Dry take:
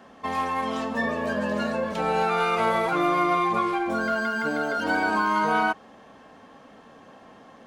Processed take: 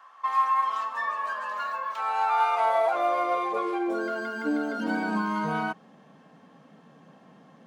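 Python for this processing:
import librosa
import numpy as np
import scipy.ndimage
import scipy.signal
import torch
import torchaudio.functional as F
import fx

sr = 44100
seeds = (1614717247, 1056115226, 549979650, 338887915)

y = fx.filter_sweep_highpass(x, sr, from_hz=1100.0, to_hz=160.0, start_s=1.98, end_s=5.52, q=5.2)
y = fx.resample_linear(y, sr, factor=2, at=(1.55, 1.97))
y = y * 10.0 ** (-7.5 / 20.0)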